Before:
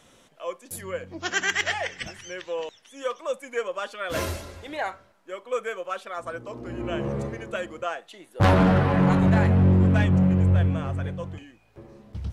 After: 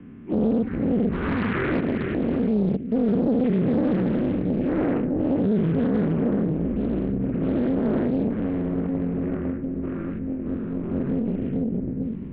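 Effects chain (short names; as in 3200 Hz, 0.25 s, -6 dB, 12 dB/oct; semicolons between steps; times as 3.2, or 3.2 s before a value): spectral dilation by 0.24 s; analogue delay 0.442 s, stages 2048, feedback 47%, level -5.5 dB; spring tank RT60 1.1 s, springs 41/57 ms, chirp 60 ms, DRR 15.5 dB; 1.8–3.08 level quantiser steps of 15 dB; resonant low shelf 730 Hz +12 dB, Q 3; limiter -12 dBFS, peak gain reduction 21.5 dB; mistuned SSB -290 Hz 440–2500 Hz; Doppler distortion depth 0.69 ms; gain -1.5 dB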